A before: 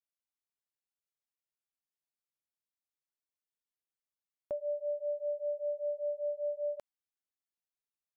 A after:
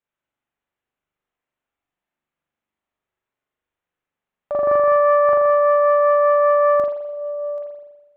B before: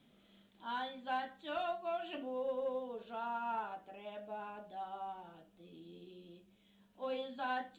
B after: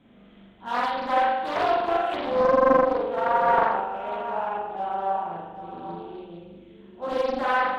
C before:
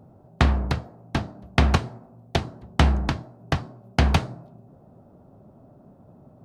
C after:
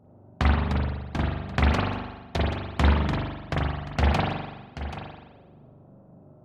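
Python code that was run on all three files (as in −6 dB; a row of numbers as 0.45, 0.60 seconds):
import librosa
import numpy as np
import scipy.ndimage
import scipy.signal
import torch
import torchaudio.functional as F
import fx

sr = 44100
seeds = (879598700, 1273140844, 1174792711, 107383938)

p1 = fx.wiener(x, sr, points=9)
p2 = p1 + fx.echo_single(p1, sr, ms=782, db=-12.0, dry=0)
p3 = fx.rev_spring(p2, sr, rt60_s=1.1, pass_ms=(41,), chirp_ms=20, drr_db=-5.0)
p4 = fx.doppler_dist(p3, sr, depth_ms=0.5)
y = p4 * 10.0 ** (-9 / 20.0) / np.max(np.abs(p4))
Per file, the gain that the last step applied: +10.5, +9.5, −7.0 decibels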